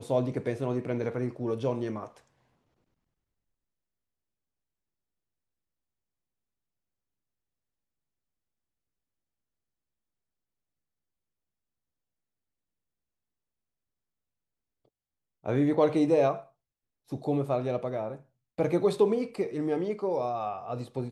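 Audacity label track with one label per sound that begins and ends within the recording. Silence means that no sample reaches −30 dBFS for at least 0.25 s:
15.460000	16.350000	sound
17.130000	18.130000	sound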